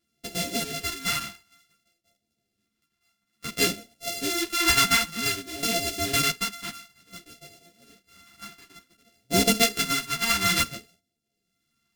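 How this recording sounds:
a buzz of ramps at a fixed pitch in blocks of 64 samples
phaser sweep stages 2, 0.56 Hz, lowest notch 550–1,100 Hz
tremolo triangle 0.87 Hz, depth 70%
a shimmering, thickened sound

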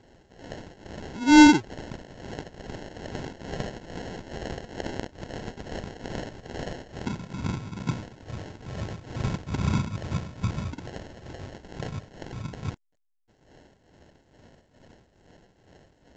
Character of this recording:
phaser sweep stages 4, 1.6 Hz, lowest notch 580–1,900 Hz
tremolo triangle 2.3 Hz, depth 80%
aliases and images of a low sample rate 1,200 Hz, jitter 0%
A-law companding

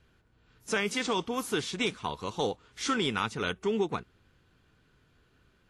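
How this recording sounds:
background noise floor −67 dBFS
spectral slope −3.5 dB per octave

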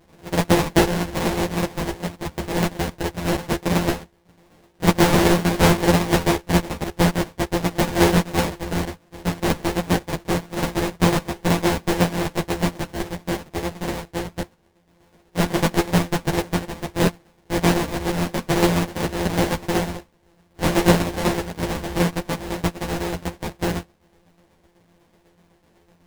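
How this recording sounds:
a buzz of ramps at a fixed pitch in blocks of 256 samples
tremolo saw down 8 Hz, depth 60%
aliases and images of a low sample rate 1,300 Hz, jitter 20%
a shimmering, thickened sound

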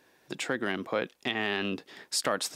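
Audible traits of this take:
background noise floor −65 dBFS
spectral slope −2.5 dB per octave

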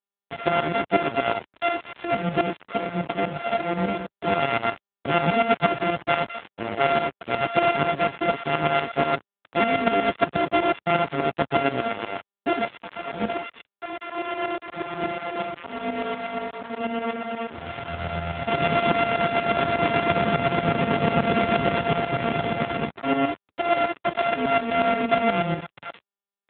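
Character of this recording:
a buzz of ramps at a fixed pitch in blocks of 64 samples
tremolo saw up 8.3 Hz, depth 70%
a quantiser's noise floor 6 bits, dither none
AMR narrowband

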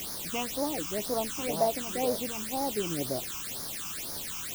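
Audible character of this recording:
a quantiser's noise floor 6 bits, dither triangular
phaser sweep stages 8, 2 Hz, lowest notch 540–2,700 Hz

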